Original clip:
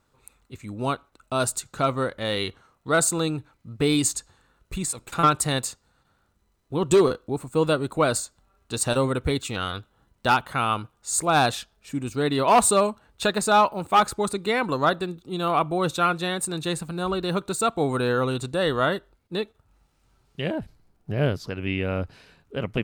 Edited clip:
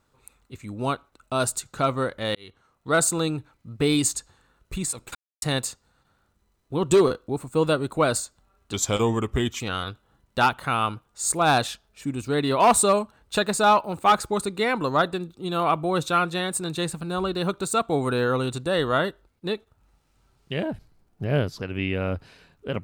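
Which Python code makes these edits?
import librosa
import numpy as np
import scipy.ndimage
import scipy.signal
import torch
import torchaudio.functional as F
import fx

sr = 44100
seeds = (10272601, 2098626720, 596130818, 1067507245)

y = fx.edit(x, sr, fx.fade_in_span(start_s=2.35, length_s=0.58),
    fx.silence(start_s=5.15, length_s=0.27),
    fx.speed_span(start_s=8.73, length_s=0.75, speed=0.86), tone=tone)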